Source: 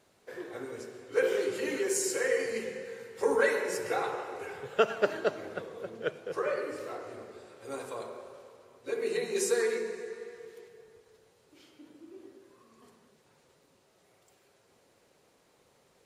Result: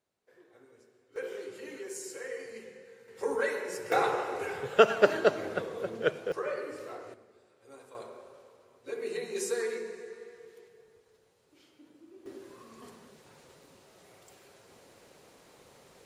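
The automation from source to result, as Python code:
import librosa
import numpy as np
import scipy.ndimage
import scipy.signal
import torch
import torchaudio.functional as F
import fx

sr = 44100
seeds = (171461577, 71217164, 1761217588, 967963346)

y = fx.gain(x, sr, db=fx.steps((0.0, -18.5), (1.16, -11.0), (3.08, -4.5), (3.92, 5.0), (6.32, -3.0), (7.14, -13.0), (7.95, -4.0), (12.26, 8.5)))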